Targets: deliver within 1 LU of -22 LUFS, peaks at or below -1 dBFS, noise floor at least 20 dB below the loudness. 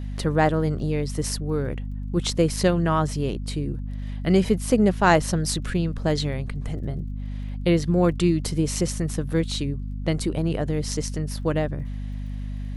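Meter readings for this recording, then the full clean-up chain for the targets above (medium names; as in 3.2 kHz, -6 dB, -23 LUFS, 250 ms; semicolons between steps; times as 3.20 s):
tick rate 22 per s; hum 50 Hz; highest harmonic 250 Hz; hum level -28 dBFS; loudness -24.5 LUFS; peak level -4.5 dBFS; loudness target -22.0 LUFS
-> de-click; de-hum 50 Hz, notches 5; trim +2.5 dB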